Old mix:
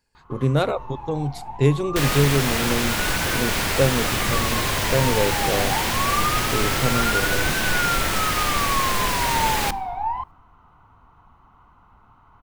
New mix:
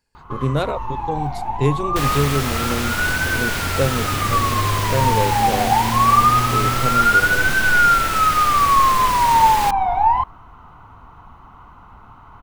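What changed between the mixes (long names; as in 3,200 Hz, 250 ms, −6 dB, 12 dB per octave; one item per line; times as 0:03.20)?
first sound +10.5 dB
reverb: off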